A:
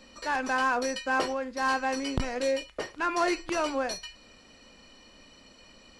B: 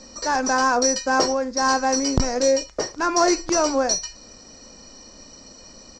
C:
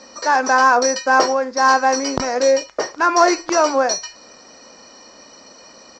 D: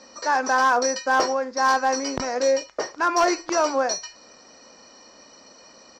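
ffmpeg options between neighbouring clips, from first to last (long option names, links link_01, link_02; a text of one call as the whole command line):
ffmpeg -i in.wav -af "firequalizer=gain_entry='entry(640,0);entry(2900,-12);entry(5600,11);entry(11000,-18)':delay=0.05:min_phase=1,volume=9dB" out.wav
ffmpeg -i in.wav -af "bandpass=frequency=1300:width_type=q:width=0.53:csg=0,volume=7.5dB" out.wav
ffmpeg -i in.wav -af "asoftclip=type=hard:threshold=-7dB,volume=-5.5dB" out.wav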